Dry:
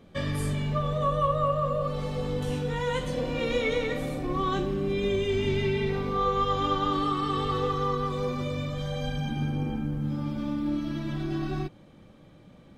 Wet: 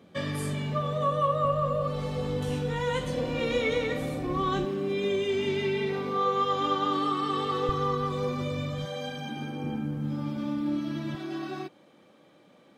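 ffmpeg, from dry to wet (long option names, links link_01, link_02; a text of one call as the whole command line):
ffmpeg -i in.wav -af "asetnsamples=nb_out_samples=441:pad=0,asendcmd='1.45 highpass f 54;4.65 highpass f 200;7.69 highpass f 79;8.85 highpass f 260;9.64 highpass f 130;11.15 highpass f 320',highpass=140" out.wav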